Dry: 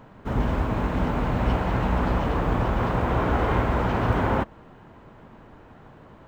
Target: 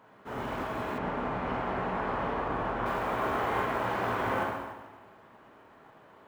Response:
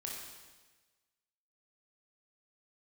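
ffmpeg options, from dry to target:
-filter_complex "[0:a]highpass=f=710:p=1,highshelf=f=2900:g=-5[s0];[1:a]atrim=start_sample=2205[s1];[s0][s1]afir=irnorm=-1:irlink=0,acrusher=bits=7:mode=log:mix=0:aa=0.000001,asettb=1/sr,asplit=3[s2][s3][s4];[s2]atrim=end=0.984[s5];[s3]atrim=start=0.98:end=2.86,asetpts=PTS-STARTPTS,afade=t=in:d=0.004:c=qsin,afade=t=out:st=1.876:d=0.004:c=qsin,aemphasis=mode=reproduction:type=75fm[s6];[s4]atrim=start=2.856[s7];[s5][s6]acrossfade=d=0.004:c1=hsin:c2=qsin[s8];[s8][s7]acrossfade=d=0.004:c1=qsin:c2=hsin"

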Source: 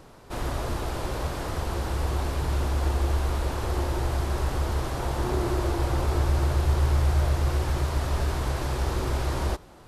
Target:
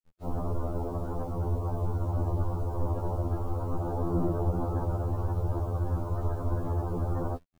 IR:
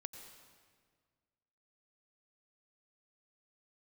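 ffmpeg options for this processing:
-filter_complex "[0:a]afftfilt=real='re*gte(hypot(re,im),0.0398)':imag='im*gte(hypot(re,im),0.0398)':win_size=1024:overlap=0.75,lowpass=f=1200:p=1,atempo=1.3,aeval=exprs='val(0)*sin(2*PI*23*n/s)':c=same,acrossover=split=280[s0][s1];[s0]alimiter=level_in=1.41:limit=0.0631:level=0:latency=1:release=158,volume=0.708[s2];[s2][s1]amix=inputs=2:normalize=0,asplit=3[s3][s4][s5];[s4]asetrate=22050,aresample=44100,atempo=2,volume=0.562[s6];[s5]asetrate=37084,aresample=44100,atempo=1.18921,volume=0.562[s7];[s3][s6][s7]amix=inputs=3:normalize=0,acrusher=bits=9:mix=0:aa=0.000001,afftfilt=real='re*2*eq(mod(b,4),0)':imag='im*2*eq(mod(b,4),0)':win_size=2048:overlap=0.75,volume=1.5"

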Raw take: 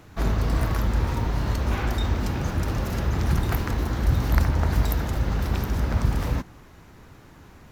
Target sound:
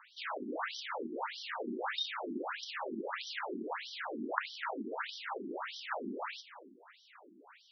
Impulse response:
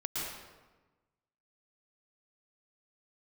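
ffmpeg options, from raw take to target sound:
-filter_complex "[0:a]asplit=2[s0][s1];[s1]highpass=f=720:p=1,volume=4.47,asoftclip=type=tanh:threshold=0.708[s2];[s0][s2]amix=inputs=2:normalize=0,lowpass=f=6400:p=1,volume=0.501,asplit=2[s3][s4];[1:a]atrim=start_sample=2205,adelay=70[s5];[s4][s5]afir=irnorm=-1:irlink=0,volume=0.141[s6];[s3][s6]amix=inputs=2:normalize=0,afftfilt=real='re*between(b*sr/1024,270*pow(4300/270,0.5+0.5*sin(2*PI*1.6*pts/sr))/1.41,270*pow(4300/270,0.5+0.5*sin(2*PI*1.6*pts/sr))*1.41)':imag='im*between(b*sr/1024,270*pow(4300/270,0.5+0.5*sin(2*PI*1.6*pts/sr))/1.41,270*pow(4300/270,0.5+0.5*sin(2*PI*1.6*pts/sr))*1.41)':win_size=1024:overlap=0.75,volume=0.562"

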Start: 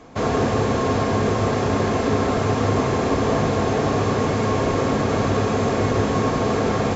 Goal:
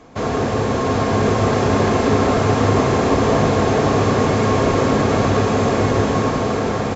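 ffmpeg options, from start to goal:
-filter_complex "[0:a]dynaudnorm=f=410:g=5:m=1.78,asplit=7[s0][s1][s2][s3][s4][s5][s6];[s1]adelay=116,afreqshift=150,volume=0.15[s7];[s2]adelay=232,afreqshift=300,volume=0.0923[s8];[s3]adelay=348,afreqshift=450,volume=0.0575[s9];[s4]adelay=464,afreqshift=600,volume=0.0355[s10];[s5]adelay=580,afreqshift=750,volume=0.0221[s11];[s6]adelay=696,afreqshift=900,volume=0.0136[s12];[s0][s7][s8][s9][s10][s11][s12]amix=inputs=7:normalize=0"

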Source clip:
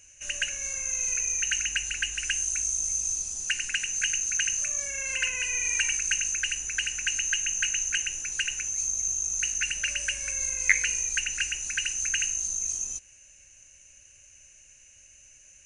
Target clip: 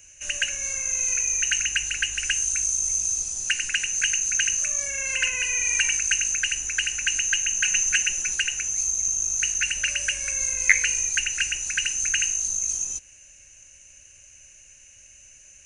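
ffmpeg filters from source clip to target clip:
-filter_complex "[0:a]asettb=1/sr,asplit=3[s0][s1][s2];[s0]atrim=end=7.644[s3];[s1]atrim=start=7.64:end=8.35,asetpts=PTS-STARTPTS,afade=t=in:d=0.004:c=qsin,afade=t=out:st=0.706:d=0.004:c=qsin,aecho=1:1:5.4:0.92,atrim=end_sample=31311[s4];[s2]atrim=start=8.346[s5];[s3][s4]acrossfade=d=0.004:c1=hsin:c2=qsin[s6];[s6][s5]acrossfade=d=0.004:c1=qsin:c2=hsin,acrossover=split=350|770|3900[s7][s8][s9][s10];[s7]aeval=exprs='clip(val(0),-1,0.00266)':c=same[s11];[s11][s8][s9][s10]amix=inputs=4:normalize=0,volume=1.58"

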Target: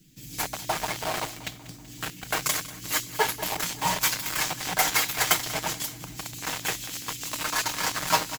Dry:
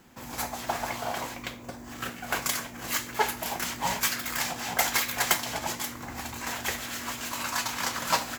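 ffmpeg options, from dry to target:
-filter_complex "[0:a]aecho=1:1:6.5:0.87,acrossover=split=320|2700[s0][s1][s2];[s1]acrusher=bits=4:mix=0:aa=0.000001[s3];[s0][s3][s2]amix=inputs=3:normalize=0,aecho=1:1:190|380|570|760|950:0.141|0.0791|0.0443|0.0248|0.0139"

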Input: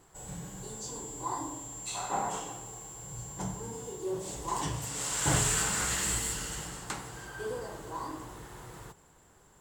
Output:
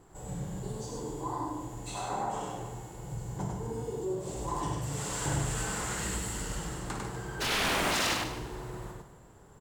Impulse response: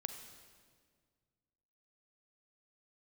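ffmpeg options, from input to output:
-filter_complex "[0:a]tiltshelf=f=1200:g=5,acompressor=threshold=0.02:ratio=2.5,asplit=3[s0][s1][s2];[s0]afade=t=out:st=7.4:d=0.02[s3];[s1]aeval=exprs='0.0398*sin(PI/2*7.94*val(0)/0.0398)':c=same,afade=t=in:st=7.4:d=0.02,afade=t=out:st=8.13:d=0.02[s4];[s2]afade=t=in:st=8.13:d=0.02[s5];[s3][s4][s5]amix=inputs=3:normalize=0,aecho=1:1:55.39|99.13:0.355|0.708,asplit=2[s6][s7];[1:a]atrim=start_sample=2205,adelay=148[s8];[s7][s8]afir=irnorm=-1:irlink=0,volume=0.355[s9];[s6][s9]amix=inputs=2:normalize=0"

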